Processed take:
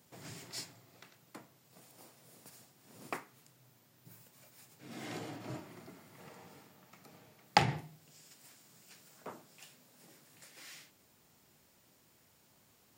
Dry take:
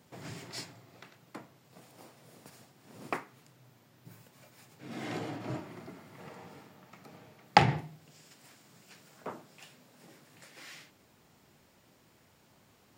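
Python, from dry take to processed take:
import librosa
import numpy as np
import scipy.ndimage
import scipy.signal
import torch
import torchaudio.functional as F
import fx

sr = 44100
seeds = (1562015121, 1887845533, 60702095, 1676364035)

y = fx.high_shelf(x, sr, hz=5200.0, db=10.5)
y = y * 10.0 ** (-6.0 / 20.0)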